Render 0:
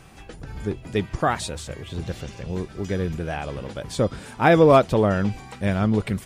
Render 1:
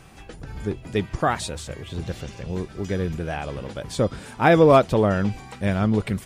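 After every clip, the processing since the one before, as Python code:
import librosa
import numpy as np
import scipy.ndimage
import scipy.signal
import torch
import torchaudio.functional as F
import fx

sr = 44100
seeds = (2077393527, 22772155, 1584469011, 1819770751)

y = x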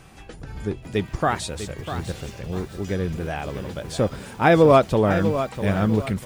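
y = fx.echo_crushed(x, sr, ms=648, feedback_pct=35, bits=7, wet_db=-10.0)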